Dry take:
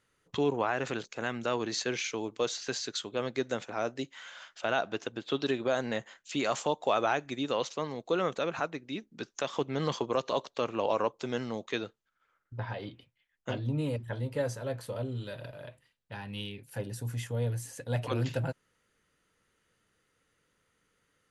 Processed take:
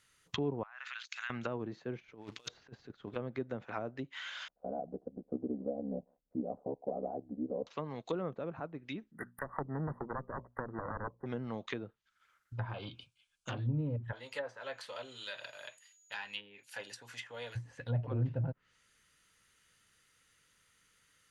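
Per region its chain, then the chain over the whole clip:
0:00.63–0:01.30: high-pass filter 1,200 Hz 24 dB per octave + downward compressor 2 to 1, threshold −43 dBFS
0:02.00–0:03.16: high-shelf EQ 11,000 Hz −11.5 dB + compressor whose output falls as the input rises −40 dBFS, ratio −0.5 + floating-point word with a short mantissa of 2 bits
0:04.48–0:07.67: elliptic low-pass filter 640 Hz, stop band 80 dB + comb filter 4.1 ms, depth 78% + ring modulation 34 Hz
0:09.11–0:11.26: phase distortion by the signal itself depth 0.74 ms + linear-phase brick-wall band-stop 2,000–9,100 Hz + mains-hum notches 60/120/180/240 Hz
0:12.67–0:13.59: bad sample-rate conversion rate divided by 2×, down none, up filtered + Butterworth band-reject 1,900 Hz, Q 3 + saturating transformer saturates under 630 Hz
0:14.11–0:17.55: high-pass filter 550 Hz + steady tone 6,800 Hz −72 dBFS
whole clip: guitar amp tone stack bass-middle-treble 5-5-5; treble cut that deepens with the level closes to 550 Hz, closed at −45.5 dBFS; level +14.5 dB

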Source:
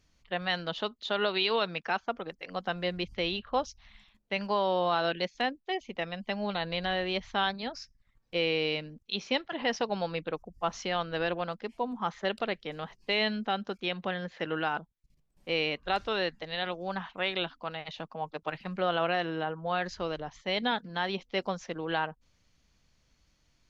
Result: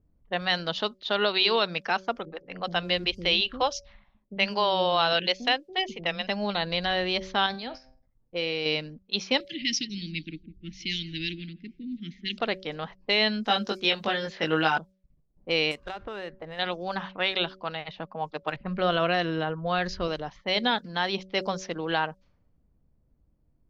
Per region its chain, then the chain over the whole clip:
0:02.25–0:06.27: dynamic equaliser 3,000 Hz, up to +6 dB, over −48 dBFS, Q 1.8 + multiband delay without the direct sound lows, highs 70 ms, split 310 Hz
0:07.46–0:08.66: tuned comb filter 130 Hz, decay 0.54 s, mix 50% + level that may fall only so fast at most 87 dB per second
0:09.40–0:12.38: Chebyshev band-stop filter 320–2,100 Hz, order 4 + high-shelf EQ 3,500 Hz +5.5 dB + repeating echo 167 ms, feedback 35%, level −19 dB
0:13.45–0:14.78: high-shelf EQ 5,200 Hz +10 dB + double-tracking delay 19 ms −2.5 dB
0:15.71–0:16.59: running median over 9 samples + downward compressor 8 to 1, threshold −35 dBFS
0:18.56–0:20.08: low-shelf EQ 120 Hz +11 dB + notch filter 840 Hz, Q 6.9 + low-pass that shuts in the quiet parts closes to 750 Hz, open at −25 dBFS
whole clip: low-pass that shuts in the quiet parts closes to 450 Hz, open at −29.5 dBFS; parametric band 5,200 Hz +7 dB 0.9 octaves; hum removal 189 Hz, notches 3; level +3.5 dB

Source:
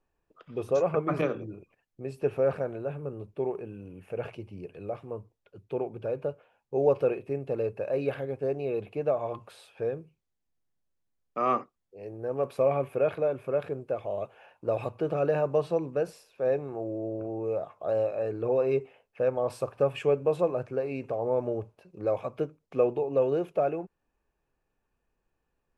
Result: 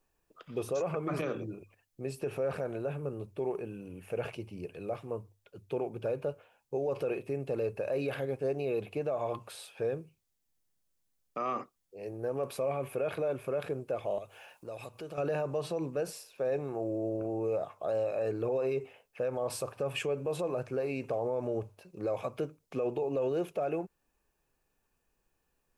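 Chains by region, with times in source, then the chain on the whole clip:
0:14.18–0:15.18: high-shelf EQ 3,000 Hz +10 dB + downward compressor 2 to 1, threshold −51 dBFS
whole clip: high-shelf EQ 4,000 Hz +11.5 dB; mains-hum notches 50/100 Hz; brickwall limiter −24.5 dBFS

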